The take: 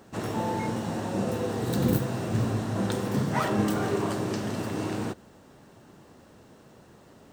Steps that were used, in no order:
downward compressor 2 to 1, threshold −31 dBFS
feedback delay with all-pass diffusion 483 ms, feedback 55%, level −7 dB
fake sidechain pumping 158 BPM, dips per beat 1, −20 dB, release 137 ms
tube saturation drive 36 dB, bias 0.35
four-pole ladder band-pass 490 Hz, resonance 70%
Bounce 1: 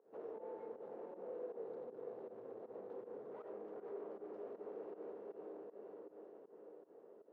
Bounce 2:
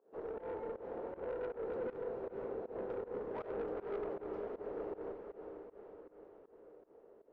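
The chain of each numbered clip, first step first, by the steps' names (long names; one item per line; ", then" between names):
feedback delay with all-pass diffusion, then fake sidechain pumping, then downward compressor, then tube saturation, then four-pole ladder band-pass
four-pole ladder band-pass, then downward compressor, then tube saturation, then feedback delay with all-pass diffusion, then fake sidechain pumping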